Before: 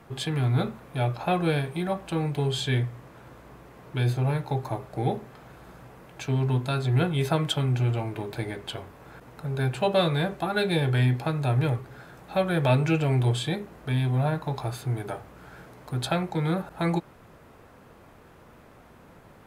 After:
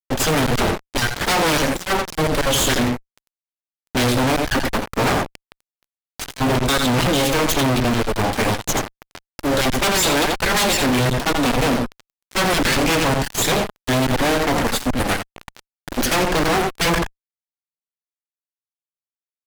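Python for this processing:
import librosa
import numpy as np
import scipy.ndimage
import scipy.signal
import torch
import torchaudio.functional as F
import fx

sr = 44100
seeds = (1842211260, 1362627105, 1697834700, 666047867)

p1 = fx.spec_dropout(x, sr, seeds[0], share_pct=26)
p2 = fx.peak_eq(p1, sr, hz=3700.0, db=4.5, octaves=0.23)
p3 = fx.rider(p2, sr, range_db=4, speed_s=2.0)
p4 = p2 + (p3 * 10.0 ** (1.0 / 20.0))
p5 = fx.cheby_harmonics(p4, sr, harmonics=(2, 6, 7, 8), levels_db=(-27, -15, -18, -7), full_scale_db=-4.0)
p6 = p5 + fx.echo_single(p5, sr, ms=85, db=-13.5, dry=0)
p7 = fx.fuzz(p6, sr, gain_db=37.0, gate_db=-37.0)
y = p7 * 10.0 ** (-3.0 / 20.0)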